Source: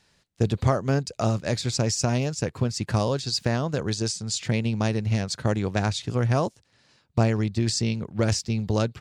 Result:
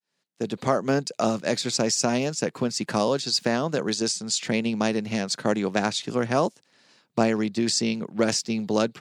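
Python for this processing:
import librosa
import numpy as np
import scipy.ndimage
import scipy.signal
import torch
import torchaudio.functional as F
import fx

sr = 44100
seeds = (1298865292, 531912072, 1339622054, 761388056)

y = fx.fade_in_head(x, sr, length_s=0.81)
y = scipy.signal.sosfilt(scipy.signal.butter(4, 180.0, 'highpass', fs=sr, output='sos'), y)
y = F.gain(torch.from_numpy(y), 3.0).numpy()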